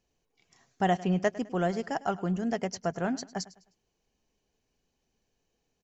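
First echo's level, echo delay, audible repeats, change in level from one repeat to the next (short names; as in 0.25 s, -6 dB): -18.5 dB, 0.103 s, 2, -9.0 dB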